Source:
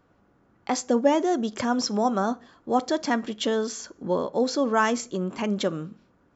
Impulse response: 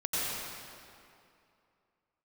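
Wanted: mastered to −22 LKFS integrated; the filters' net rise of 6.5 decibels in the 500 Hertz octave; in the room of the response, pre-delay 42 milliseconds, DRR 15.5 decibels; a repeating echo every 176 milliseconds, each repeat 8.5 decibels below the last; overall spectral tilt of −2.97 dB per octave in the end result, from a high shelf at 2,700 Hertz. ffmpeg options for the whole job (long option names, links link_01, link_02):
-filter_complex "[0:a]equalizer=frequency=500:width_type=o:gain=8,highshelf=frequency=2700:gain=-7,aecho=1:1:176|352|528|704:0.376|0.143|0.0543|0.0206,asplit=2[link_01][link_02];[1:a]atrim=start_sample=2205,adelay=42[link_03];[link_02][link_03]afir=irnorm=-1:irlink=0,volume=-24dB[link_04];[link_01][link_04]amix=inputs=2:normalize=0,volume=-1dB"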